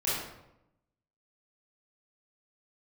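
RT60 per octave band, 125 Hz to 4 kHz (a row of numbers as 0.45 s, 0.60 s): 1.1 s, 1.0 s, 0.90 s, 0.80 s, 0.70 s, 0.55 s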